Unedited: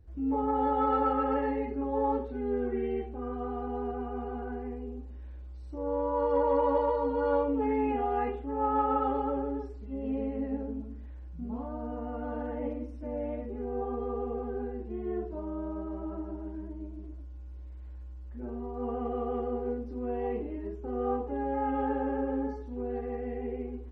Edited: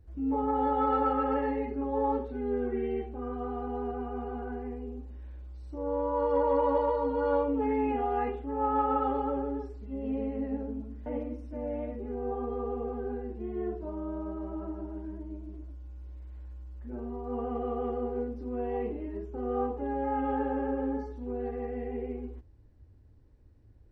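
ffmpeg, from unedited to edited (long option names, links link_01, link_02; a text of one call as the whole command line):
ffmpeg -i in.wav -filter_complex "[0:a]asplit=2[link_01][link_02];[link_01]atrim=end=11.062[link_03];[link_02]atrim=start=12.558[link_04];[link_03][link_04]acrossfade=duration=0.004:curve1=hsin:curve2=hsin" out.wav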